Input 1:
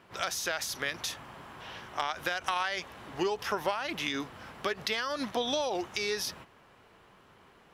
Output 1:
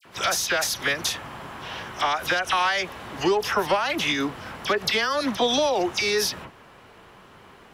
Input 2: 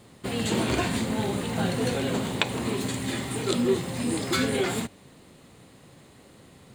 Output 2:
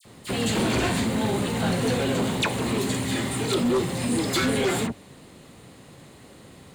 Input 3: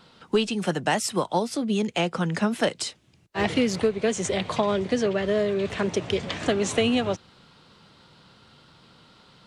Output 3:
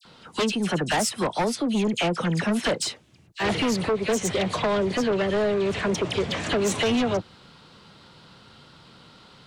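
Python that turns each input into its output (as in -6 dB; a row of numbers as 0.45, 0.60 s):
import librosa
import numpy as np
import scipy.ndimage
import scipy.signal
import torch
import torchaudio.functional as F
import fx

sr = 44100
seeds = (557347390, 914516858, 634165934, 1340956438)

y = fx.dispersion(x, sr, late='lows', ms=53.0, hz=2100.0)
y = fx.fold_sine(y, sr, drive_db=9, ceiling_db=-9.5)
y = y * 10.0 ** (-26 / 20.0) / np.sqrt(np.mean(np.square(y)))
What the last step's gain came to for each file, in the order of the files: -3.5, -8.5, -9.5 dB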